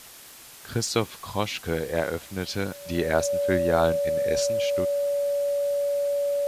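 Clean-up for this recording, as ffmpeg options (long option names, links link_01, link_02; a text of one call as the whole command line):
ffmpeg -i in.wav -af "adeclick=threshold=4,bandreject=frequency=570:width=30,afwtdn=0.0056" out.wav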